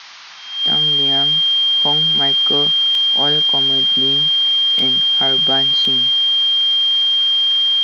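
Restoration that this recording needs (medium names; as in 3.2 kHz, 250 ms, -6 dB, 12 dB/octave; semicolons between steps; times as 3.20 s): band-stop 3.2 kHz, Q 30; interpolate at 2.95/4.79/5.85 s, 2 ms; noise print and reduce 30 dB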